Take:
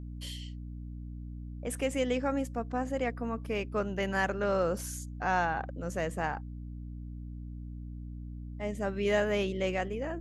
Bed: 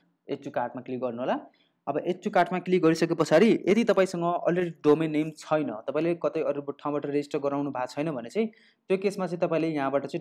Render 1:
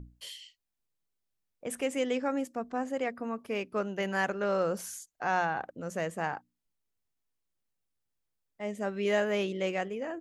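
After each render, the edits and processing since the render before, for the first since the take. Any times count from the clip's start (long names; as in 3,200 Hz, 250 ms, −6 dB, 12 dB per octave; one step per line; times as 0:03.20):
mains-hum notches 60/120/180/240/300 Hz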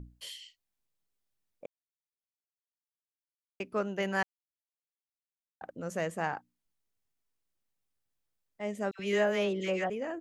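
0:01.66–0:03.60: silence
0:04.23–0:05.61: silence
0:08.91–0:09.90: all-pass dispersion lows, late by 82 ms, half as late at 1,500 Hz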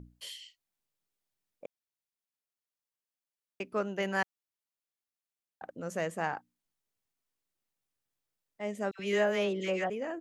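low-shelf EQ 81 Hz −8 dB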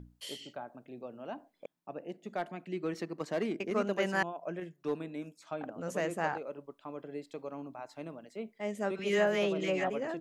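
mix in bed −14 dB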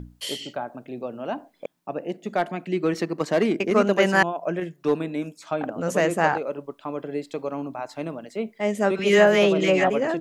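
level +12 dB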